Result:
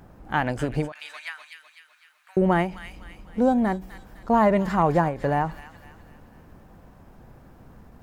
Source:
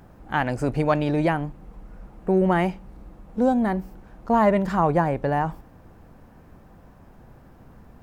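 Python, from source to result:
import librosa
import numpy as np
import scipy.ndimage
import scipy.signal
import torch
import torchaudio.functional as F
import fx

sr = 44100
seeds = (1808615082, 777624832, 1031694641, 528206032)

y = fx.cheby2_highpass(x, sr, hz=420.0, order=4, stop_db=60, at=(0.92, 2.37))
y = fx.echo_wet_highpass(y, sr, ms=252, feedback_pct=46, hz=2600.0, wet_db=-4.5)
y = fx.end_taper(y, sr, db_per_s=150.0)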